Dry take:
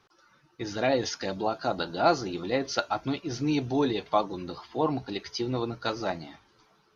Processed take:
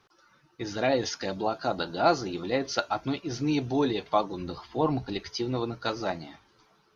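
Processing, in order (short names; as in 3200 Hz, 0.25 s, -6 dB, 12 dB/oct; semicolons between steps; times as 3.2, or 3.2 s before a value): 4.39–5.29 low shelf 94 Hz +12 dB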